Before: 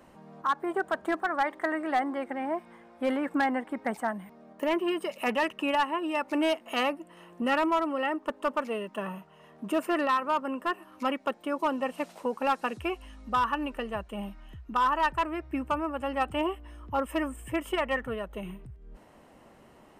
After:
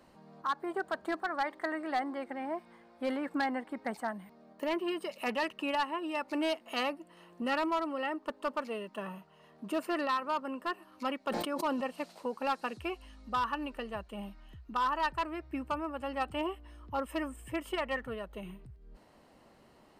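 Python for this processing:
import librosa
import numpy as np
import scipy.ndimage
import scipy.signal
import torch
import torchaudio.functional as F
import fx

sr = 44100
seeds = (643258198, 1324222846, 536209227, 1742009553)

y = fx.peak_eq(x, sr, hz=4400.0, db=9.5, octaves=0.42)
y = fx.sustainer(y, sr, db_per_s=35.0, at=(11.21, 11.87))
y = y * librosa.db_to_amplitude(-5.5)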